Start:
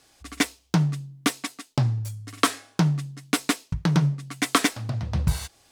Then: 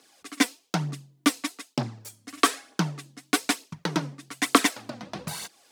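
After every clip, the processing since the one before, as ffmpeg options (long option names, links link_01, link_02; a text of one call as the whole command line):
ffmpeg -i in.wav -af "highpass=frequency=200:width=0.5412,highpass=frequency=200:width=1.3066,aphaser=in_gain=1:out_gain=1:delay=4.2:decay=0.48:speed=1.1:type=triangular,volume=-1dB" out.wav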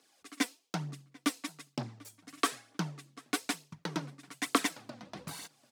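ffmpeg -i in.wav -filter_complex "[0:a]asplit=2[link_01][link_02];[link_02]adelay=742,lowpass=frequency=3800:poles=1,volume=-23.5dB,asplit=2[link_03][link_04];[link_04]adelay=742,lowpass=frequency=3800:poles=1,volume=0.35[link_05];[link_01][link_03][link_05]amix=inputs=3:normalize=0,volume=-9dB" out.wav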